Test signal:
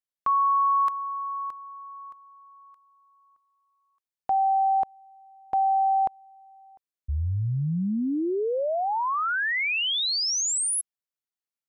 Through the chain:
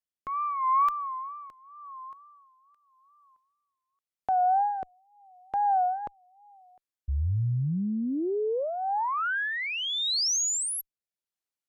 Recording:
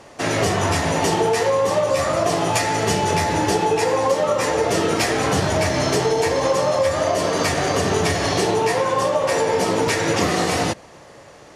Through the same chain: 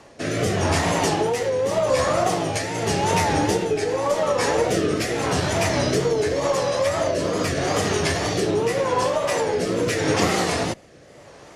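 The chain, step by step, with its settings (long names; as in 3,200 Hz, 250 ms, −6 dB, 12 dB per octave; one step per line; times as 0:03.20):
tape wow and flutter 2.1 Hz 110 cents
harmonic generator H 2 −20 dB, 6 −44 dB, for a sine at −5 dBFS
rotating-speaker cabinet horn 0.85 Hz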